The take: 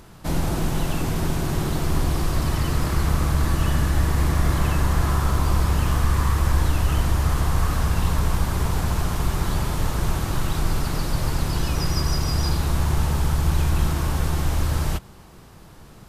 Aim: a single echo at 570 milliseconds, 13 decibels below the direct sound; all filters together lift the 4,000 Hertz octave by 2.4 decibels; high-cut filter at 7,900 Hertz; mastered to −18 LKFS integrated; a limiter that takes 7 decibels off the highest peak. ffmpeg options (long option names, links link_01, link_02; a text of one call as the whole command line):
ffmpeg -i in.wav -af "lowpass=7900,equalizer=frequency=4000:width_type=o:gain=3.5,alimiter=limit=-15dB:level=0:latency=1,aecho=1:1:570:0.224,volume=7.5dB" out.wav